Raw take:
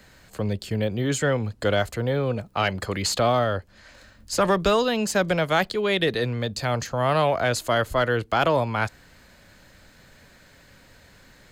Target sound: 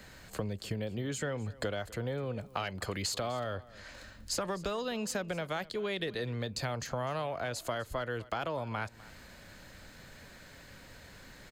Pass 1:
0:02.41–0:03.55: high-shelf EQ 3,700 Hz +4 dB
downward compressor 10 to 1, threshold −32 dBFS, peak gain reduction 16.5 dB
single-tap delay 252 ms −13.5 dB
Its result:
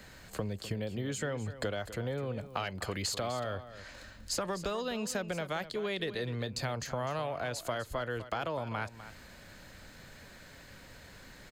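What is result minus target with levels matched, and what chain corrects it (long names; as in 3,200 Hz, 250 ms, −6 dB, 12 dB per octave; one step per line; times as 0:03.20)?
echo-to-direct +6.5 dB
0:02.41–0:03.55: high-shelf EQ 3,700 Hz +4 dB
downward compressor 10 to 1, threshold −32 dBFS, peak gain reduction 16.5 dB
single-tap delay 252 ms −20 dB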